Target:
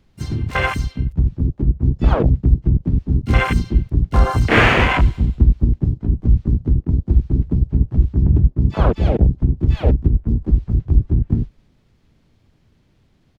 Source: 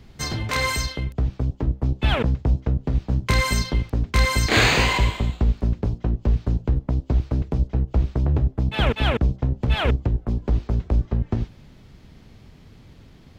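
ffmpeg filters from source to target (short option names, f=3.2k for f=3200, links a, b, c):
-filter_complex "[0:a]asplit=4[a][b][c][d];[b]asetrate=33038,aresample=44100,atempo=1.33484,volume=-4dB[e];[c]asetrate=58866,aresample=44100,atempo=0.749154,volume=-7dB[f];[d]asetrate=88200,aresample=44100,atempo=0.5,volume=-17dB[g];[a][e][f][g]amix=inputs=4:normalize=0,afwtdn=0.112,volume=4dB"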